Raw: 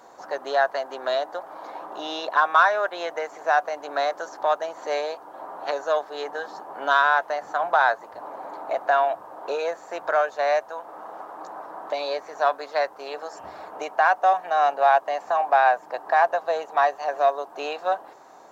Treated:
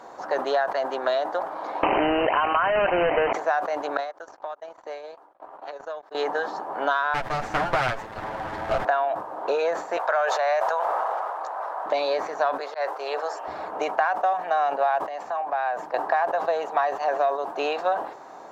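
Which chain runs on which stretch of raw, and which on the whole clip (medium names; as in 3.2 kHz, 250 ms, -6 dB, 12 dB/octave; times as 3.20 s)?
1.83–3.33 s: square wave that keeps the level + brick-wall FIR low-pass 3.1 kHz + level flattener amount 70%
3.97–6.15 s: high-pass 260 Hz + compression 12:1, threshold -33 dBFS + gate -37 dBFS, range -53 dB
7.14–8.85 s: comb filter that takes the minimum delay 9.2 ms + treble shelf 4.7 kHz +7.5 dB + loudspeaker Doppler distortion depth 0.32 ms
9.97–11.86 s: high-pass 520 Hz 24 dB/octave + decay stretcher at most 22 dB/s
12.60–13.48 s: high-pass 390 Hz 24 dB/octave + slow attack 210 ms
14.99–15.94 s: compression 2:1, threshold -38 dBFS + three bands expanded up and down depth 40%
whole clip: compression 6:1, threshold -26 dBFS; low-pass 3.5 kHz 6 dB/octave; decay stretcher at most 90 dB/s; trim +6 dB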